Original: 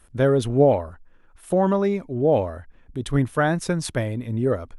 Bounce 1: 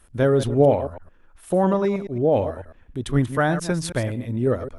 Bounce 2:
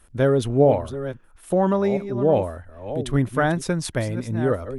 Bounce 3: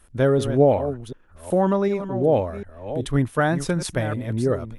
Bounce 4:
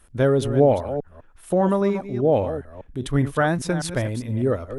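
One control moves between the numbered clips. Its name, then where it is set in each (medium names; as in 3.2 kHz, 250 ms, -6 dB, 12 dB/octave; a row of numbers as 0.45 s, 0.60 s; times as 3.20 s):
chunks repeated in reverse, time: 109 ms, 658 ms, 376 ms, 201 ms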